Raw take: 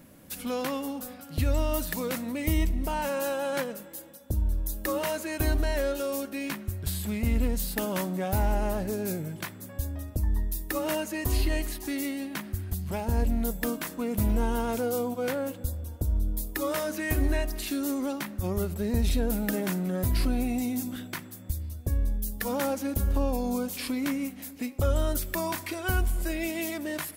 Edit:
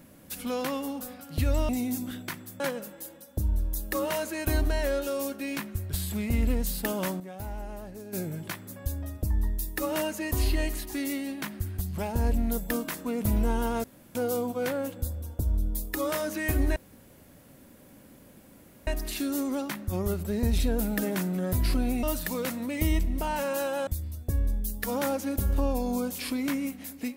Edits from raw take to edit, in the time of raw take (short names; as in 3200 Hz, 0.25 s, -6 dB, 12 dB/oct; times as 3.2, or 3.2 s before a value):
1.69–3.53 swap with 20.54–21.45
7.78–9.41 dip -11.5 dB, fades 0.35 s logarithmic
14.77 insert room tone 0.31 s
17.38 insert room tone 2.11 s